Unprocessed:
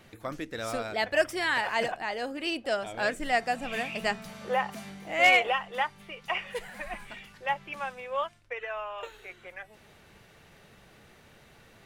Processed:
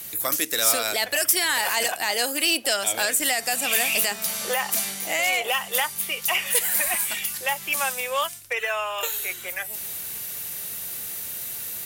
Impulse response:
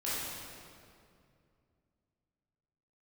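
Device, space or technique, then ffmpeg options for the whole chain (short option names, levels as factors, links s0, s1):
FM broadcast chain: -filter_complex "[0:a]highpass=49,dynaudnorm=f=130:g=3:m=1.58,acrossover=split=270|1100|4700[s0][s1][s2][s3];[s0]acompressor=threshold=0.002:ratio=4[s4];[s1]acompressor=threshold=0.0316:ratio=4[s5];[s2]acompressor=threshold=0.0282:ratio=4[s6];[s3]acompressor=threshold=0.00316:ratio=4[s7];[s4][s5][s6][s7]amix=inputs=4:normalize=0,aemphasis=mode=production:type=75fm,alimiter=limit=0.0944:level=0:latency=1:release=11,asoftclip=type=hard:threshold=0.075,lowpass=f=15000:w=0.5412,lowpass=f=15000:w=1.3066,aemphasis=mode=production:type=75fm,asettb=1/sr,asplit=3[s8][s9][s10];[s8]atrim=end=4.224[s11];[s9]atrim=start=4.22:end=5.44,asetpts=PTS-STARTPTS,afade=t=in:d=0.004:c=qsin,afade=t=out:st=1.216:d=0.004:c=qsin,highshelf=f=10000:g=-8.5[s12];[s10]atrim=start=5.436[s13];[s11][s12]acrossfade=d=0.004:c1=hsin:c2=qsin[s14];[s14][s13]acrossfade=d=0.004:c1=qsin:c2=hsin,volume=1.68"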